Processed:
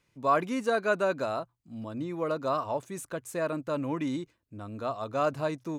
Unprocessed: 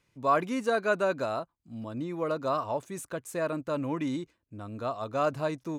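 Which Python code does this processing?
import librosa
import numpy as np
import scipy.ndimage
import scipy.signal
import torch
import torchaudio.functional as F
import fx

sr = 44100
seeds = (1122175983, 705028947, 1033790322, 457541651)

y = fx.hum_notches(x, sr, base_hz=60, count=2)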